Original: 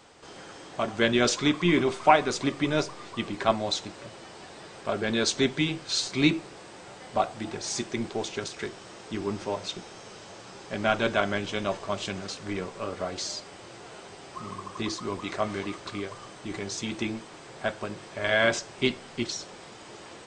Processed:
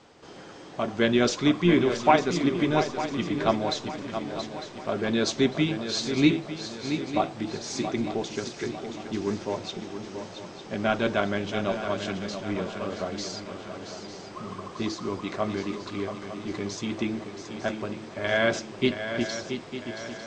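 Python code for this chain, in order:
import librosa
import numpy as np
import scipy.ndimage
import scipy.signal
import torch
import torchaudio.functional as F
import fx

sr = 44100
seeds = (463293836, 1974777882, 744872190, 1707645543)

y = scipy.signal.sosfilt(scipy.signal.butter(4, 7100.0, 'lowpass', fs=sr, output='sos'), x)
y = fx.peak_eq(y, sr, hz=230.0, db=5.5, octaves=2.6)
y = fx.echo_swing(y, sr, ms=901, ratio=3, feedback_pct=45, wet_db=-9)
y = y * 10.0 ** (-2.5 / 20.0)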